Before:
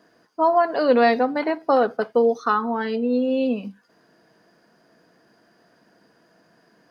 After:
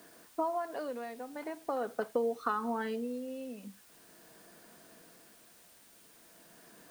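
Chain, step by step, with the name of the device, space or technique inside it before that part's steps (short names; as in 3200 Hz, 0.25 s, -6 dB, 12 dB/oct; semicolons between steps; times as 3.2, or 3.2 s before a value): medium wave at night (BPF 120–4000 Hz; compressor, threshold -29 dBFS, peak gain reduction 16 dB; tremolo 0.43 Hz, depth 71%; whine 9000 Hz -68 dBFS; white noise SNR 22 dB)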